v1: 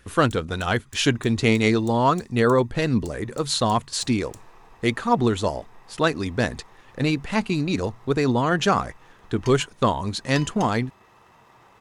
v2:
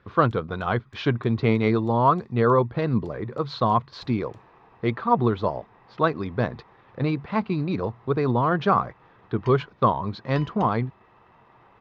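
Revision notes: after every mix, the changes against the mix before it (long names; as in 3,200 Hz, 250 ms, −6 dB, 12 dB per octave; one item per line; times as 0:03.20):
speech: add loudspeaker in its box 110–5,500 Hz, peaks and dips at 120 Hz +4 dB, 270 Hz −5 dB, 1,100 Hz +6 dB, 1,800 Hz −5 dB, 2,800 Hz −7 dB
master: add high-frequency loss of the air 320 metres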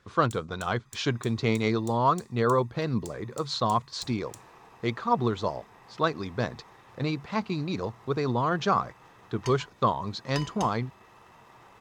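speech −5.5 dB
master: remove high-frequency loss of the air 320 metres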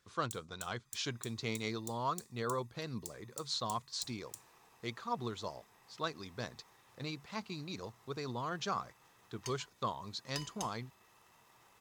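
master: add first-order pre-emphasis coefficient 0.8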